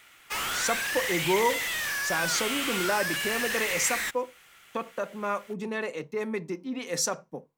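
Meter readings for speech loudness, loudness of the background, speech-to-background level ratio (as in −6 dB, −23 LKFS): −31.0 LKFS, −28.5 LKFS, −2.5 dB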